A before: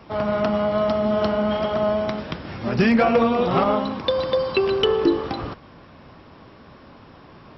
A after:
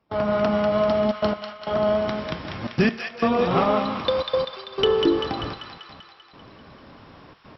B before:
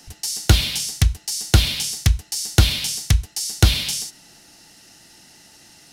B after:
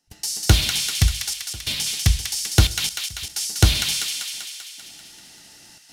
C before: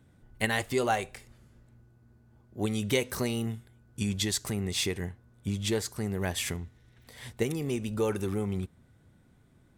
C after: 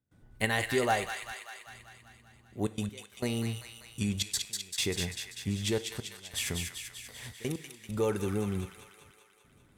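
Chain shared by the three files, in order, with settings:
gate pattern ".xxxxxxxxx.x.." 135 BPM −24 dB
delay with a high-pass on its return 195 ms, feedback 64%, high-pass 1,400 Hz, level −4 dB
dense smooth reverb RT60 0.62 s, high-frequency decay 0.95×, DRR 14.5 dB
level −1 dB

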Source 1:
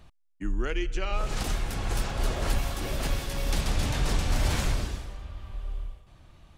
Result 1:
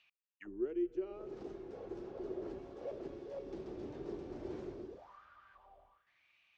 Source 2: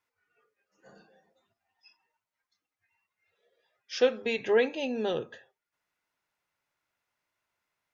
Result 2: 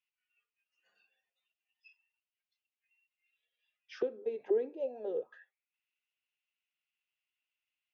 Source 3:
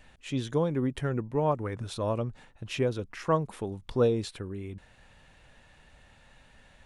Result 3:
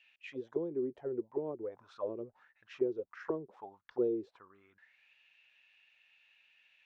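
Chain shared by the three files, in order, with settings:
envelope filter 370–2,800 Hz, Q 7.1, down, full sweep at −25 dBFS
low-pass with resonance 6,000 Hz, resonance Q 1.8
level +2 dB

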